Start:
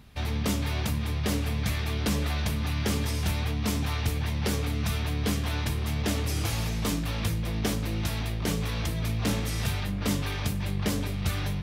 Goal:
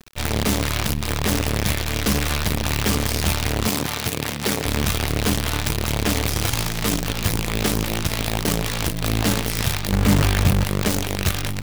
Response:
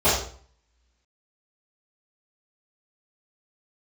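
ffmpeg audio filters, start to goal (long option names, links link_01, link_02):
-filter_complex "[0:a]asettb=1/sr,asplit=3[link_01][link_02][link_03];[link_01]atrim=end=9.924[link_04];[link_02]atrim=start=9.92:end=10.64,asetpts=PTS-STARTPTS,afade=type=in:duration=0.004:curve=qsin,afade=type=out:start_time=0.716:duration=0.004:curve=qsin,bass=frequency=250:gain=7,treble=frequency=4000:gain=-7[link_05];[link_03]atrim=start=10.636[link_06];[link_04][link_05]acrossfade=duration=0.004:curve1=hsin:curve2=qsin[link_07];[link_07][link_06]acrossfade=duration=0.004:curve1=qsin:curve2=hsin,acrusher=bits=5:dc=4:mix=0:aa=0.000001,asettb=1/sr,asplit=3[link_08][link_09][link_10];[link_08]atrim=end=3.684[link_11];[link_09]atrim=start=3.68:end=4.65,asetpts=PTS-STARTPTS,afade=type=in:duration=0.004:curve=qsin,afade=type=out:start_time=0.966:duration=0.004:curve=qsin,highpass=140[link_12];[link_10]atrim=start=4.646[link_13];[link_11][link_12]acrossfade=duration=0.004:curve1=hsin:curve2=qsin[link_14];[link_14][link_13]acrossfade=duration=0.004:curve1=qsin:curve2=hsin,volume=6dB"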